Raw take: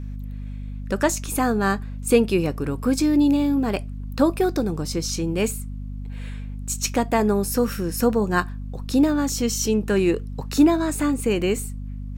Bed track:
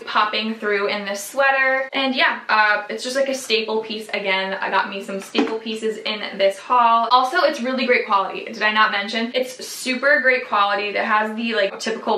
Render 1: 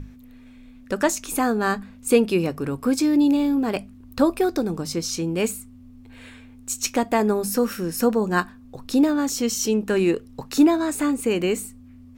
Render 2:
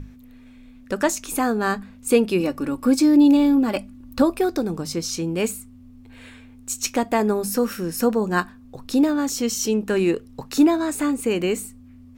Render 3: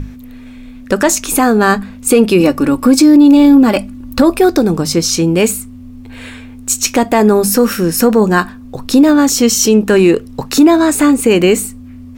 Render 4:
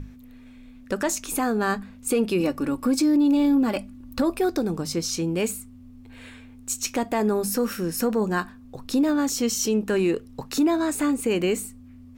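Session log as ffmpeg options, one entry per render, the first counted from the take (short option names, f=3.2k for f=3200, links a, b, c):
-af "bandreject=f=50:t=h:w=6,bandreject=f=100:t=h:w=6,bandreject=f=150:t=h:w=6,bandreject=f=200:t=h:w=6"
-filter_complex "[0:a]asettb=1/sr,asplit=3[a][b][c];[a]atrim=end=2.404[d];[b]atrim=start=2.4:end=4.22,asetpts=PTS-STARTPTS,afade=t=in:d=0.004:c=qsin,afade=t=out:st=1.816:d=0.004:c=qsin,aecho=1:1:3.5:0.61,atrim=end_sample=80262[e];[c]atrim=start=4.216[f];[d][e]acrossfade=d=0.004:c1=hsin:c2=qsin[g];[g][f]acrossfade=d=0.004:c1=qsin:c2=hsin"
-af "acontrast=33,alimiter=level_in=8dB:limit=-1dB:release=50:level=0:latency=1"
-af "volume=-13.5dB"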